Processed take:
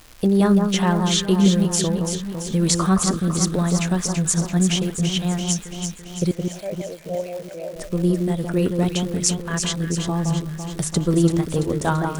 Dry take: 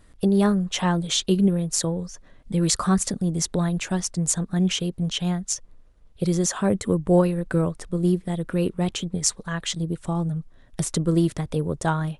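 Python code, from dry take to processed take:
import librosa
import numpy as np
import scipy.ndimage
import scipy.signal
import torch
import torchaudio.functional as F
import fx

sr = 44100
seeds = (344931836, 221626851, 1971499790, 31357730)

y = fx.double_bandpass(x, sr, hz=1200.0, octaves=1.9, at=(6.31, 7.76))
y = fx.echo_alternate(y, sr, ms=168, hz=1500.0, feedback_pct=76, wet_db=-4.5)
y = fx.dmg_crackle(y, sr, seeds[0], per_s=370.0, level_db=-34.0)
y = y * librosa.db_to_amplitude(2.0)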